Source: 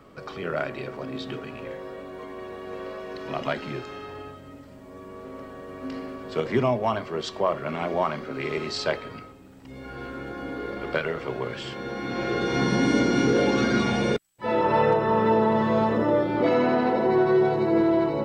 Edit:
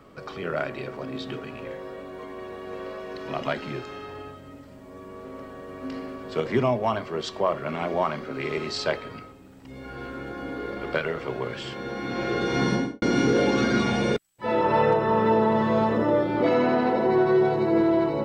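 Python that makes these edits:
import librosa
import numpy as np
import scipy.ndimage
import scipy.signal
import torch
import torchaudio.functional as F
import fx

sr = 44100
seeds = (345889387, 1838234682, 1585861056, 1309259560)

y = fx.studio_fade_out(x, sr, start_s=12.68, length_s=0.34)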